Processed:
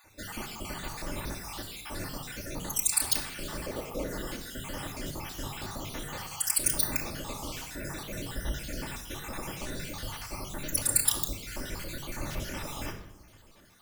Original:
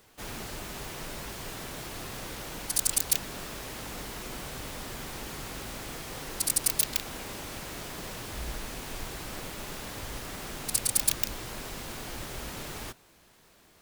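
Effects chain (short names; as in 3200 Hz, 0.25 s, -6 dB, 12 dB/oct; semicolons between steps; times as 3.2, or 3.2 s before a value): random spectral dropouts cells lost 58%; 3.66–4.11 graphic EQ 500/1000/4000/8000 Hz +12/-4/-5/-5 dB; shoebox room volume 2600 m³, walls furnished, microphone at 2.5 m; gain +2 dB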